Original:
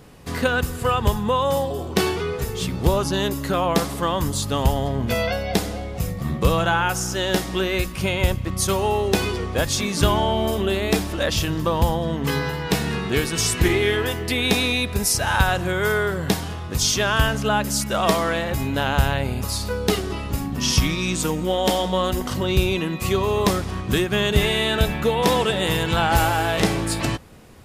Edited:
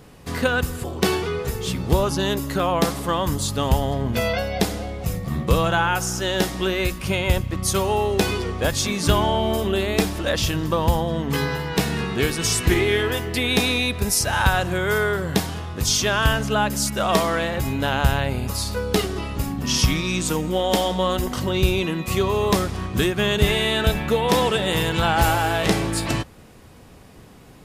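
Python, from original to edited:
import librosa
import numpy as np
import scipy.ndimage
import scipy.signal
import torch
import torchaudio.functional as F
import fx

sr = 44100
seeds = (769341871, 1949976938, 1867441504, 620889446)

y = fx.edit(x, sr, fx.cut(start_s=0.84, length_s=0.94), tone=tone)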